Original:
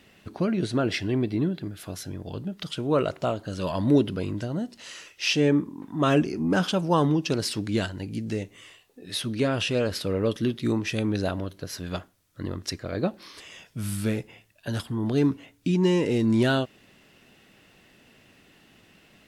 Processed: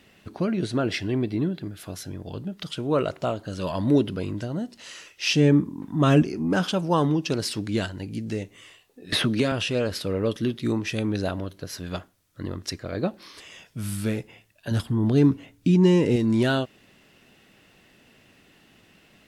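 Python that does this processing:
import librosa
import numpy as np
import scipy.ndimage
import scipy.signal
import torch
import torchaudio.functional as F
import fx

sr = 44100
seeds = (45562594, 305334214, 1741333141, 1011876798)

y = fx.bass_treble(x, sr, bass_db=8, treble_db=2, at=(5.26, 6.23))
y = fx.band_squash(y, sr, depth_pct=100, at=(9.12, 9.52))
y = fx.low_shelf(y, sr, hz=290.0, db=7.5, at=(14.71, 16.16))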